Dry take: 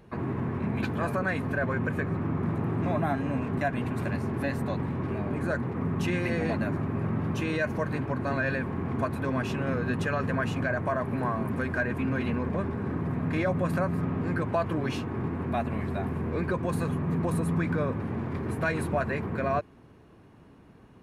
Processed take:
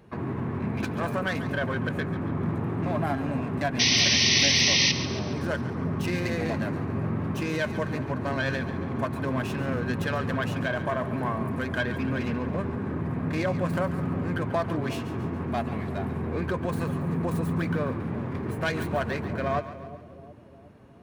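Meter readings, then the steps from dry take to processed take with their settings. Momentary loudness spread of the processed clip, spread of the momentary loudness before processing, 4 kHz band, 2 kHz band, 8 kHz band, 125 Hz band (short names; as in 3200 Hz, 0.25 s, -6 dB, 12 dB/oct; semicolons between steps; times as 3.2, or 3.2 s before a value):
11 LU, 4 LU, +20.5 dB, +3.0 dB, +19.5 dB, 0.0 dB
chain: tracing distortion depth 0.12 ms; HPF 46 Hz; painted sound noise, 3.79–4.92, 1800–6200 Hz -22 dBFS; on a send: split-band echo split 680 Hz, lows 0.36 s, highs 0.14 s, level -12.5 dB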